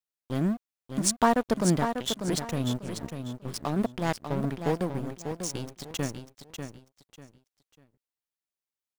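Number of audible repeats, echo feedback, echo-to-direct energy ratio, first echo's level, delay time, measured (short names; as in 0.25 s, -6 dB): 3, 27%, -7.0 dB, -7.5 dB, 0.594 s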